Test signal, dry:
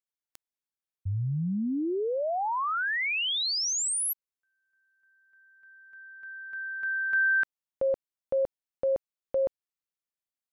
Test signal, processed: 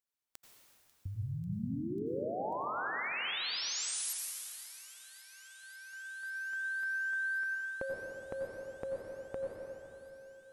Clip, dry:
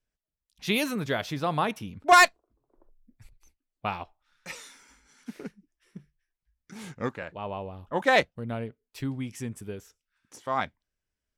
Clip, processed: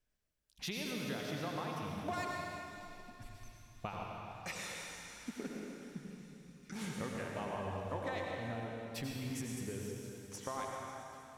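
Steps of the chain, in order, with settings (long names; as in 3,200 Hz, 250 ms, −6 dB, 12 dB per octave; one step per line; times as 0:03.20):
downward compressor 16 to 1, threshold −39 dBFS
on a send: delay with a high-pass on its return 543 ms, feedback 80%, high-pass 2,500 Hz, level −19 dB
on the sum: dense smooth reverb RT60 3 s, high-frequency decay 0.85×, pre-delay 75 ms, DRR −1.5 dB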